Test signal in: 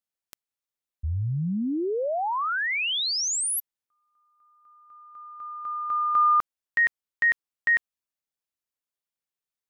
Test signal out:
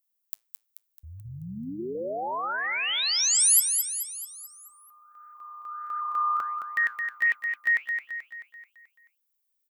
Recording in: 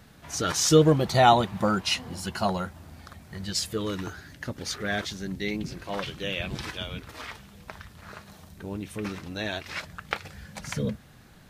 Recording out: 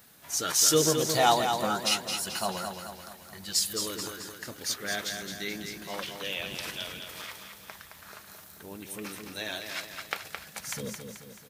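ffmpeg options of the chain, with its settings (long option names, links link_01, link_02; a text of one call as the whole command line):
ffmpeg -i in.wav -af "aemphasis=mode=production:type=bsi,flanger=delay=1.7:depth=8.9:regen=-85:speed=1.5:shape=triangular,aecho=1:1:217|434|651|868|1085|1302:0.473|0.241|0.123|0.0628|0.032|0.0163" out.wav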